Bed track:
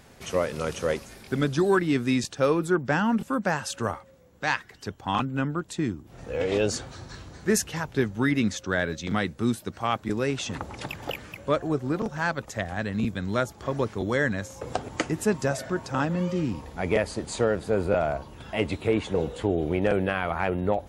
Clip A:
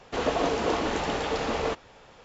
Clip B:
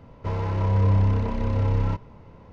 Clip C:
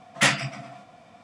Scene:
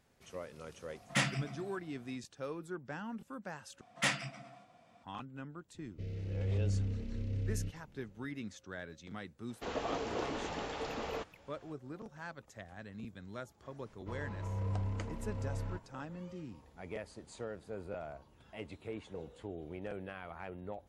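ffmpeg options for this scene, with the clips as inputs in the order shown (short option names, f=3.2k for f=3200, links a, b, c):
-filter_complex "[3:a]asplit=2[a][b];[2:a]asplit=2[c][d];[0:a]volume=-19dB[e];[a]lowshelf=f=200:g=11.5[f];[c]asuperstop=centerf=1000:order=4:qfactor=0.52[g];[e]asplit=2[h][i];[h]atrim=end=3.814[j];[b]atrim=end=1.23,asetpts=PTS-STARTPTS,volume=-12dB[k];[i]atrim=start=5.036[l];[f]atrim=end=1.23,asetpts=PTS-STARTPTS,volume=-12.5dB,afade=t=in:d=0.004:c=hsin,afade=t=out:st=1.226:d=0.004:c=hsin,adelay=940[m];[g]atrim=end=2.52,asetpts=PTS-STARTPTS,volume=-13.5dB,afade=t=in:d=0.004:c=hsin,afade=t=out:st=2.516:d=0.004:c=hsin,adelay=5740[n];[1:a]atrim=end=2.24,asetpts=PTS-STARTPTS,volume=-11.5dB,afade=t=in:d=0.004:c=hsin,afade=t=out:st=2.236:d=0.004:c=hsin,adelay=9490[o];[d]atrim=end=2.52,asetpts=PTS-STARTPTS,volume=-16.5dB,afade=t=in:d=0.004:c=hsin,afade=t=out:st=2.516:d=0.004:c=hsin,adelay=13820[p];[j][k]acrossfade=d=0.004:c1=hsin:c2=hsin[q];[q][l]acrossfade=d=0.004:c1=hsin:c2=hsin[r];[r][m][n][o][p]amix=inputs=5:normalize=0"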